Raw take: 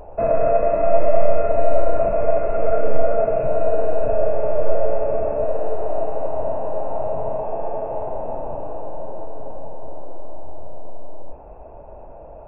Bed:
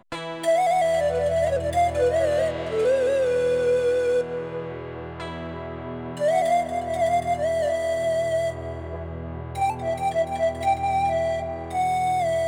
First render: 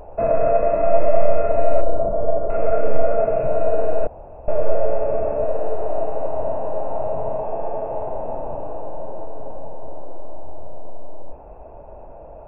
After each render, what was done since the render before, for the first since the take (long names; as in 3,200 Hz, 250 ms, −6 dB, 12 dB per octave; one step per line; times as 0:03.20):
0:01.81–0:02.50: Gaussian smoothing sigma 7.7 samples
0:04.07–0:04.48: fill with room tone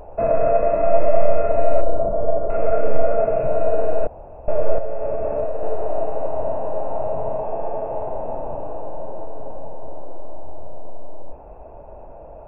0:04.78–0:05.63: downward compressor, threshold −16 dBFS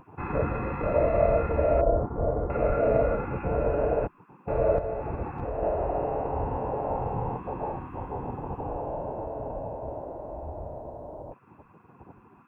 gate on every frequency bin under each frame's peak −20 dB weak
low-shelf EQ 150 Hz +10 dB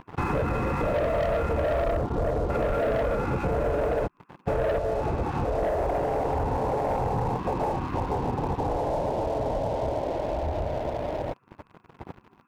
leveller curve on the samples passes 3
downward compressor 6 to 1, threshold −24 dBFS, peak gain reduction 10 dB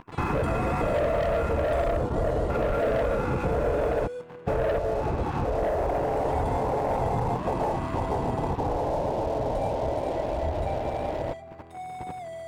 mix in bed −15 dB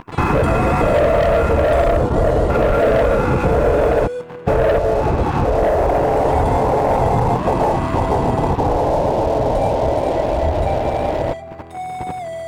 level +10.5 dB